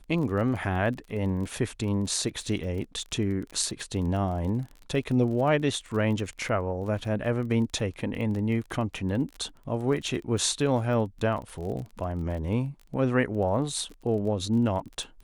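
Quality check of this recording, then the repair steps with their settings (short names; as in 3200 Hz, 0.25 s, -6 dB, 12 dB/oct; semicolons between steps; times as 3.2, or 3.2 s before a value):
crackle 27/s -35 dBFS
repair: de-click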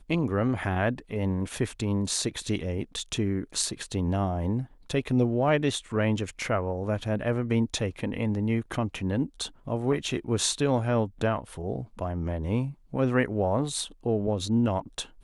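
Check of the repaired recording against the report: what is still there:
none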